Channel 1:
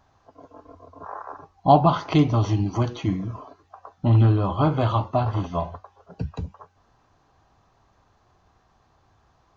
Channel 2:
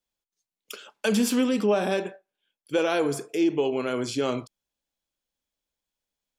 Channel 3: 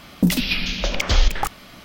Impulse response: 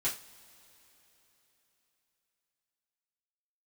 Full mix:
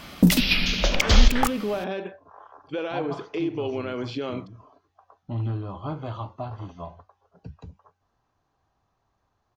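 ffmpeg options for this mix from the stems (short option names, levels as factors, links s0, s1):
-filter_complex "[0:a]adelay=1250,volume=0.266[s0];[1:a]lowpass=f=4100:w=0.5412,lowpass=f=4100:w=1.3066,alimiter=limit=0.0891:level=0:latency=1:release=131,volume=1.06,asplit=2[s1][s2];[2:a]volume=1.12[s3];[s2]apad=whole_len=476860[s4];[s0][s4]sidechaincompress=threshold=0.0282:ratio=8:attack=16:release=750[s5];[s5][s1][s3]amix=inputs=3:normalize=0"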